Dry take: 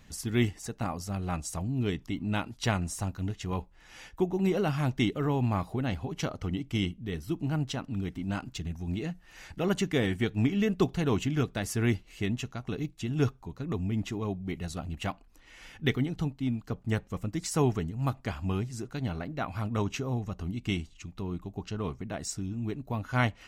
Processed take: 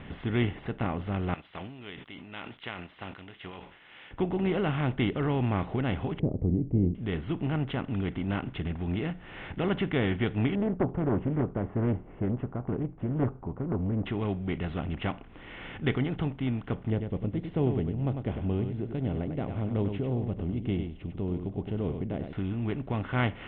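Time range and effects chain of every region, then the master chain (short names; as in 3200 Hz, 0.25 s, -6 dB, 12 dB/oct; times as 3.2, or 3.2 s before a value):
1.34–4.11 differentiator + sustainer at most 82 dB/s
6.19–6.95 inverse Chebyshev low-pass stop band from 1300 Hz, stop band 50 dB + low shelf 320 Hz +9 dB
10.55–14.06 LPF 1000 Hz 24 dB/oct + Doppler distortion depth 0.59 ms
16.9–22.33 EQ curve 550 Hz 0 dB, 1300 Hz -22 dB, 5300 Hz -11 dB + echo 98 ms -11 dB
whole clip: per-bin compression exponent 0.6; steep low-pass 3400 Hz 72 dB/oct; gain -3.5 dB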